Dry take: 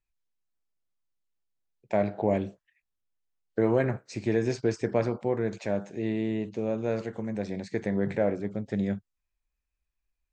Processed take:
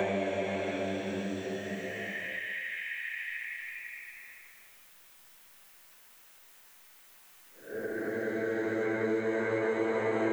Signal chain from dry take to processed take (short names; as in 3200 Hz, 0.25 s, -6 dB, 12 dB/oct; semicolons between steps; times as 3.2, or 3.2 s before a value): tilt +4.5 dB/oct; Paulstretch 8.5×, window 0.50 s, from 2.44; three-band squash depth 100%; gain +5.5 dB